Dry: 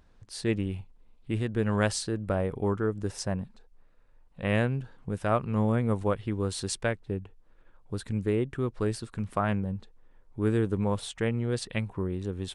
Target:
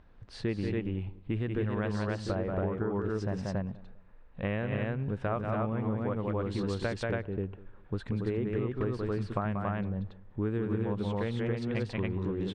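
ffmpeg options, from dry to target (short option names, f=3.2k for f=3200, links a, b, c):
-filter_complex "[0:a]lowpass=2.9k,asplit=2[a][b];[b]aecho=0:1:183.7|279.9:0.562|0.891[c];[a][c]amix=inputs=2:normalize=0,acompressor=threshold=-30dB:ratio=6,asplit=2[d][e];[e]adelay=199,lowpass=f=1.1k:p=1,volume=-20dB,asplit=2[f][g];[g]adelay=199,lowpass=f=1.1k:p=1,volume=0.31[h];[f][h]amix=inputs=2:normalize=0[i];[d][i]amix=inputs=2:normalize=0,volume=2dB"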